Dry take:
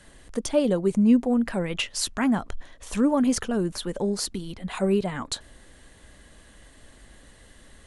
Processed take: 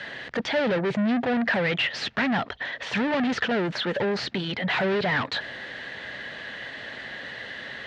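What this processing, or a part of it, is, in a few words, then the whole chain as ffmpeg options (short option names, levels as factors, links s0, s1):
overdrive pedal into a guitar cabinet: -filter_complex "[0:a]asplit=2[s0][s1];[s1]highpass=f=720:p=1,volume=44.7,asoftclip=type=tanh:threshold=0.335[s2];[s0][s2]amix=inputs=2:normalize=0,lowpass=f=6000:p=1,volume=0.501,highpass=85,equalizer=f=130:t=q:w=4:g=7,equalizer=f=320:t=q:w=4:g=-5,equalizer=f=1100:t=q:w=4:g=-6,equalizer=f=1800:t=q:w=4:g=6,lowpass=f=4200:w=0.5412,lowpass=f=4200:w=1.3066,volume=0.422"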